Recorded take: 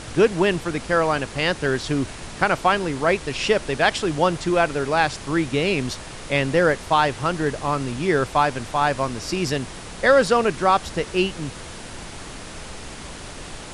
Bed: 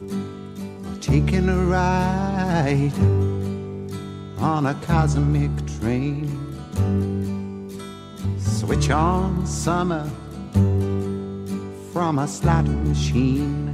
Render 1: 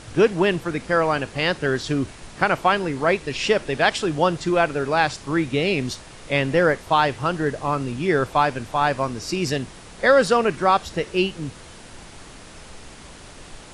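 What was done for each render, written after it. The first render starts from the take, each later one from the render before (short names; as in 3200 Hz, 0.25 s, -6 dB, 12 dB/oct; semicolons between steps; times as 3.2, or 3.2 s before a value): noise print and reduce 6 dB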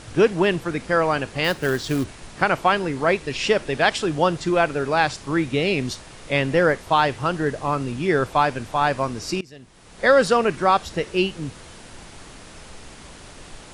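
1.44–2.04 short-mantissa float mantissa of 2-bit; 9.41–10.07 fade in quadratic, from -23 dB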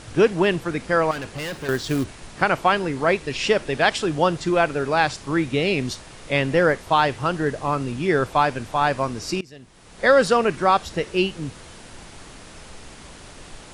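1.11–1.69 overloaded stage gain 27.5 dB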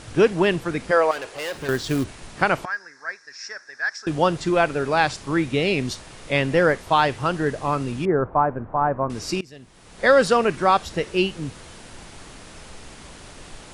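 0.91–1.55 resonant low shelf 300 Hz -13.5 dB, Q 1.5; 2.65–4.07 double band-pass 3000 Hz, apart 1.7 oct; 8.05–9.1 LPF 1300 Hz 24 dB/oct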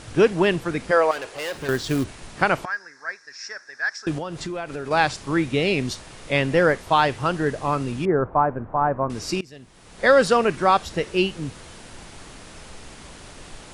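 4.18–4.91 compressor, threshold -27 dBFS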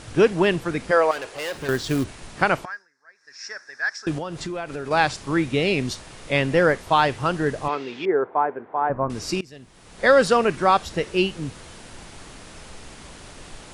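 2.54–3.47 dip -20.5 dB, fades 0.33 s; 7.68–8.9 speaker cabinet 400–5300 Hz, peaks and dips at 410 Hz +6 dB, 580 Hz -5 dB, 1200 Hz -5 dB, 2100 Hz +5 dB, 3400 Hz +5 dB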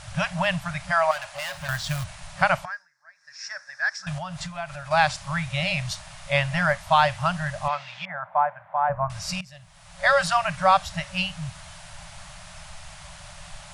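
FFT band-reject 190–550 Hz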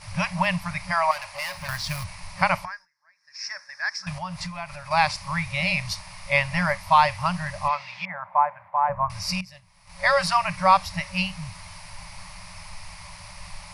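ripple EQ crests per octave 0.87, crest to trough 10 dB; gate -46 dBFS, range -7 dB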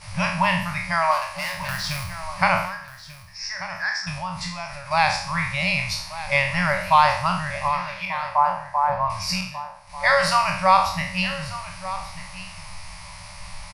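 spectral trails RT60 0.60 s; echo 1.19 s -14.5 dB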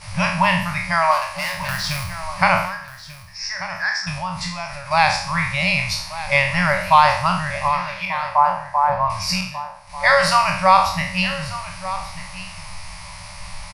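gain +3.5 dB; limiter -1 dBFS, peak gain reduction 1 dB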